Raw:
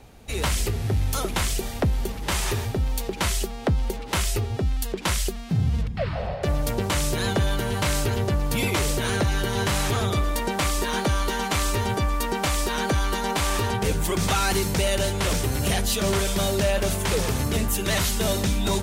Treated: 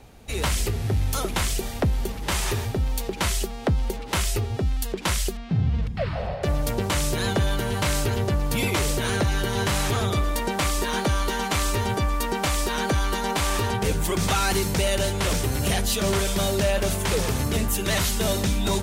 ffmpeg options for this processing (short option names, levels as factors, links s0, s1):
-filter_complex "[0:a]asettb=1/sr,asplit=3[s0][s1][s2];[s0]atrim=end=5.374[s3];[s1]atrim=start=5.37:end=5.83,asetpts=PTS-STARTPTS,afade=t=in:d=0.004:c=qsin,afade=t=out:st=0.456:d=0.004:c=qsin,lowpass=3700[s4];[s2]atrim=start=5.826[s5];[s3][s4]acrossfade=d=0.004:c1=hsin:c2=qsin[s6];[s6][s5]acrossfade=d=0.004:c1=qsin:c2=hsin"